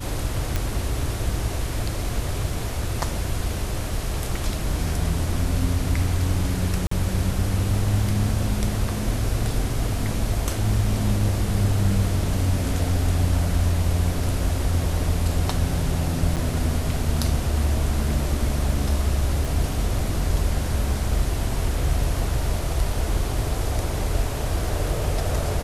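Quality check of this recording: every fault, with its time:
0.56 pop -9 dBFS
6.87–6.91 gap 44 ms
16.36–16.37 gap 7.9 ms
19.45 pop

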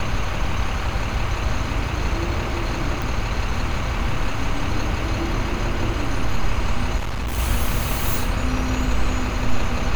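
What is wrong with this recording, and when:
3.02 pop
6.97–7.39 clipped -21.5 dBFS

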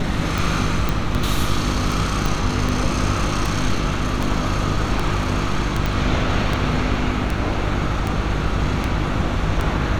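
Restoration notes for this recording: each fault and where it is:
hum 50 Hz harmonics 7 -25 dBFS
tick 78 rpm
0.89 pop
2.26 pop
5.86 pop -8 dBFS

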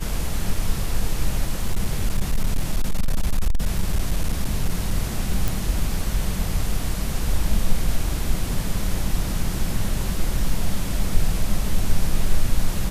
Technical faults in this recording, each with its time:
1.63–4.94 clipped -14.5 dBFS
5.48 pop

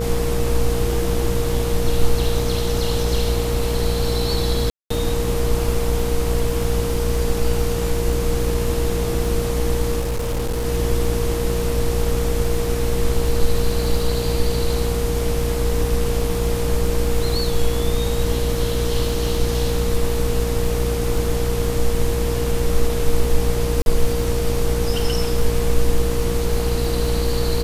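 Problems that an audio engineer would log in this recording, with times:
buzz 60 Hz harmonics 21 -23 dBFS
crackle 30/s -26 dBFS
tone 470 Hz -24 dBFS
4.7–4.9 gap 0.204 s
9.99–10.66 clipped -19 dBFS
23.82–23.86 gap 41 ms

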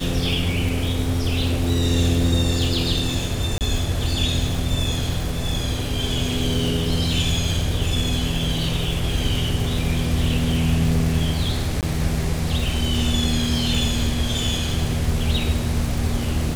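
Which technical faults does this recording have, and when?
crackle 360/s -28 dBFS
3.58–3.61 gap 28 ms
11.81–11.83 gap 18 ms

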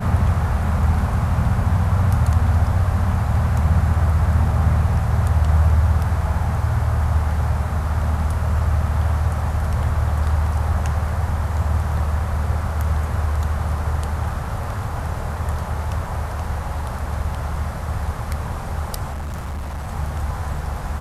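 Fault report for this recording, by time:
19.11–19.89 clipped -24.5 dBFS

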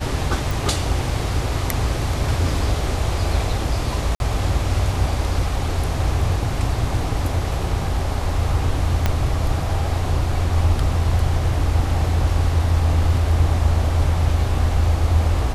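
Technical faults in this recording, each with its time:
0.51 pop
4.15–4.2 gap 51 ms
9.06 pop -5 dBFS

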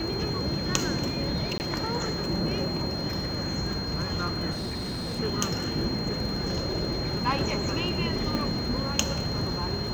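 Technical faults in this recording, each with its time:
crackle 21/s -33 dBFS
tone 4200 Hz -34 dBFS
1.58–1.6 gap 19 ms
4.51–5.2 clipped -29 dBFS
8.35 pop -17 dBFS

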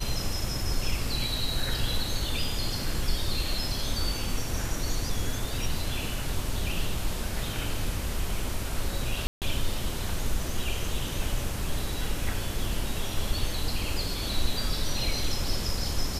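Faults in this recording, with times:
9.27–9.42 gap 0.148 s

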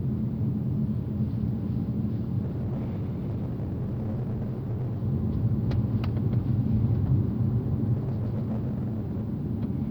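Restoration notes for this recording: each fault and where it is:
2.41–4.99 clipped -27 dBFS
7.95–9.24 clipped -25.5 dBFS

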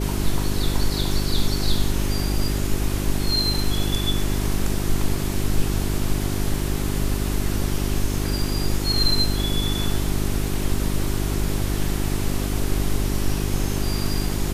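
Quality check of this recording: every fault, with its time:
hum 50 Hz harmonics 8 -25 dBFS

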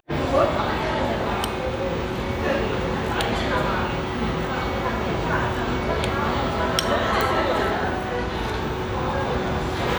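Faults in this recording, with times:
7.21 pop

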